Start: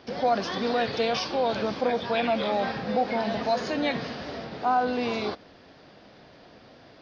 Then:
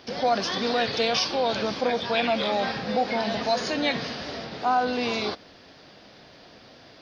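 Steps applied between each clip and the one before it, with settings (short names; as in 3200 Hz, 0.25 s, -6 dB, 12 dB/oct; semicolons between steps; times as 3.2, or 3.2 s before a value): high shelf 2800 Hz +9.5 dB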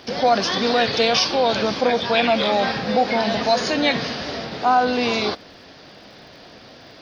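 crackle 100/s -55 dBFS; gain +6 dB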